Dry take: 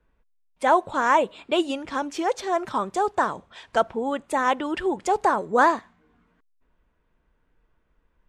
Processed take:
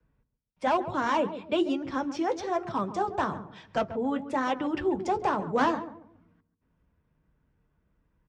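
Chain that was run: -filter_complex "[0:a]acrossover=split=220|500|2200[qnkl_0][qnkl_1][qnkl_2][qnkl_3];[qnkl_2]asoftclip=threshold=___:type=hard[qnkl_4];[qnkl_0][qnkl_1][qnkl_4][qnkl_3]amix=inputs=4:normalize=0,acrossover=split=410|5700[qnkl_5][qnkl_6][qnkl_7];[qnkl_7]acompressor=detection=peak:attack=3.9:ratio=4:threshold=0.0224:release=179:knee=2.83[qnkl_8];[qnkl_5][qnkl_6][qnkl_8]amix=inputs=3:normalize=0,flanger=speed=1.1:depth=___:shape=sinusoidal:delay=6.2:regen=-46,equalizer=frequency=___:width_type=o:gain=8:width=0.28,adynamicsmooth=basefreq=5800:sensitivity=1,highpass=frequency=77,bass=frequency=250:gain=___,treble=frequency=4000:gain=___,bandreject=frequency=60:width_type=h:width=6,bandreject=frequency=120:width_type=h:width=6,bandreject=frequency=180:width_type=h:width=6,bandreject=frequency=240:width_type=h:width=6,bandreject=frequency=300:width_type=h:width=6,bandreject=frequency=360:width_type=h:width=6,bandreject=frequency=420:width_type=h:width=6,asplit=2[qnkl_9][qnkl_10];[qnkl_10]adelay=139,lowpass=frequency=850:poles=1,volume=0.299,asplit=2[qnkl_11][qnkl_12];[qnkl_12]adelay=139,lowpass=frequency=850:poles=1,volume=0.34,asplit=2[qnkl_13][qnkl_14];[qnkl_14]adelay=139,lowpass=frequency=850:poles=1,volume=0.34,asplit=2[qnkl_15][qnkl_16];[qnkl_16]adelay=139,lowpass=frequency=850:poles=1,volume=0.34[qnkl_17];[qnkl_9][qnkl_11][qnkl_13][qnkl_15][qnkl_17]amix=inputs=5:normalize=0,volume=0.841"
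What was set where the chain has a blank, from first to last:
0.119, 5.5, 5500, 14, -1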